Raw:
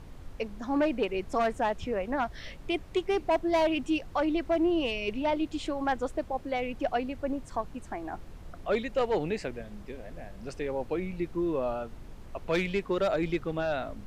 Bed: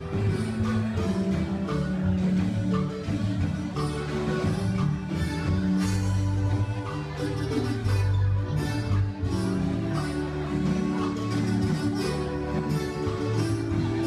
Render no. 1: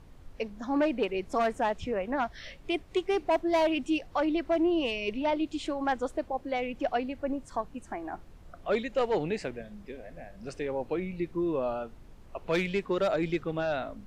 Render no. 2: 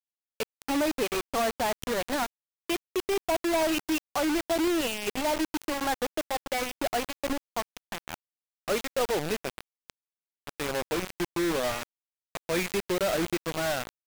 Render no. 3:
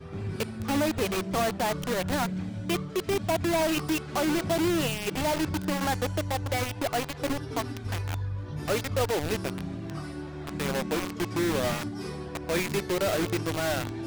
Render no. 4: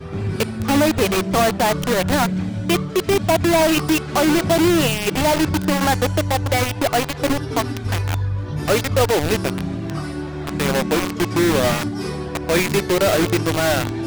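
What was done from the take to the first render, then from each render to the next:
noise reduction from a noise print 6 dB
bit reduction 5 bits
mix in bed −8.5 dB
level +10 dB

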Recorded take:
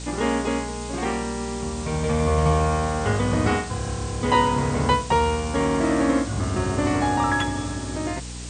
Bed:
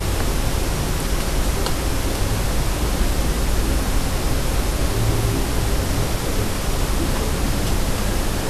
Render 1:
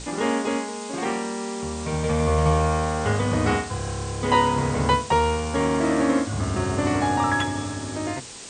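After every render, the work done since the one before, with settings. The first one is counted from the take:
mains-hum notches 60/120/180/240/300/360 Hz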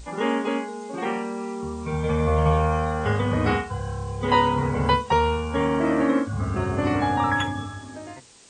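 noise reduction from a noise print 12 dB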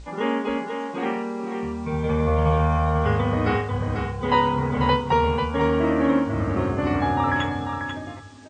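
high-frequency loss of the air 91 metres
single-tap delay 492 ms −6.5 dB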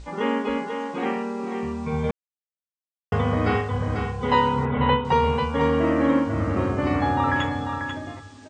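0:02.11–0:03.12: silence
0:04.65–0:05.05: Butterworth low-pass 3,800 Hz 96 dB per octave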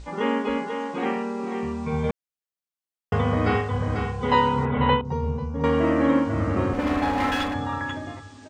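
0:05.01–0:05.64: drawn EQ curve 140 Hz 0 dB, 350 Hz −6 dB, 1,400 Hz −17 dB, 3,100 Hz −24 dB, 6,000 Hz −8 dB, 9,000 Hz −23 dB
0:06.73–0:07.54: lower of the sound and its delayed copy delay 3.8 ms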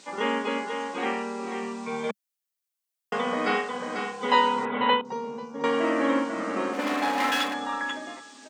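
Chebyshev high-pass filter 200 Hz, order 4
spectral tilt +2.5 dB per octave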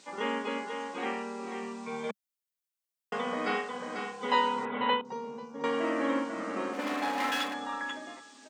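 level −5.5 dB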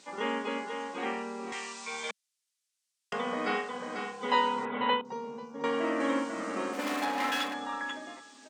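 0:01.52–0:03.13: meter weighting curve ITU-R 468
0:06.00–0:07.05: high-shelf EQ 5,800 Hz +9.5 dB

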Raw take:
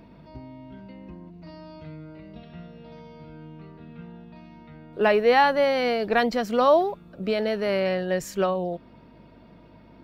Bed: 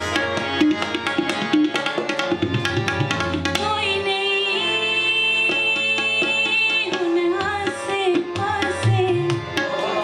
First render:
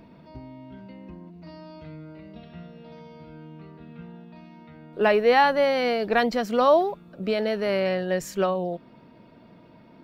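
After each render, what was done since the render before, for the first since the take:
hum removal 50 Hz, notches 3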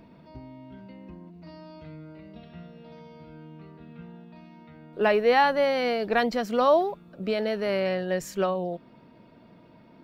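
level −2 dB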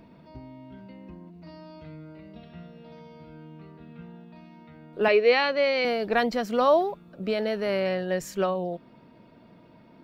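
0:05.08–0:05.85: loudspeaker in its box 290–5,500 Hz, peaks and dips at 420 Hz +5 dB, 860 Hz −9 dB, 1,600 Hz −4 dB, 2,400 Hz +9 dB, 4,400 Hz +6 dB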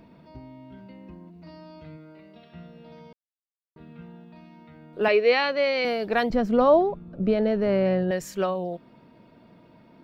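0:01.96–0:02.52: high-pass filter 210 Hz → 450 Hz 6 dB per octave
0:03.13–0:03.76: silence
0:06.30–0:08.11: spectral tilt −3.5 dB per octave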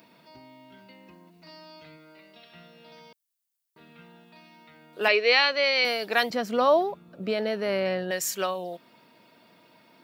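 high-pass filter 86 Hz
spectral tilt +4 dB per octave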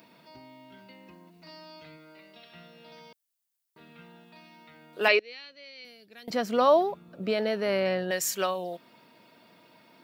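0:05.19–0:06.28: guitar amp tone stack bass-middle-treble 10-0-1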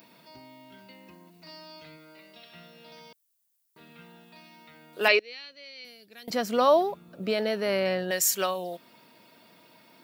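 high-shelf EQ 5,700 Hz +8.5 dB

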